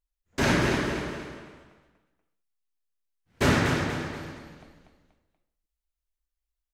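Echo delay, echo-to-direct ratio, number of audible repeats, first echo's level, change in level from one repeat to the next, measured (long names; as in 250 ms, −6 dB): 240 ms, −6.0 dB, 3, −6.5 dB, −8.0 dB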